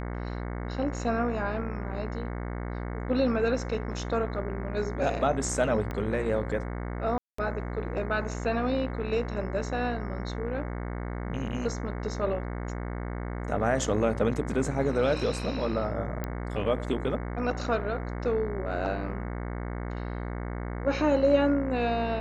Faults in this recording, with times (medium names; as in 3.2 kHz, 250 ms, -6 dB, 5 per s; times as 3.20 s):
buzz 60 Hz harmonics 37 -34 dBFS
5.91 s: pop -21 dBFS
7.18–7.38 s: dropout 204 ms
16.24 s: pop -18 dBFS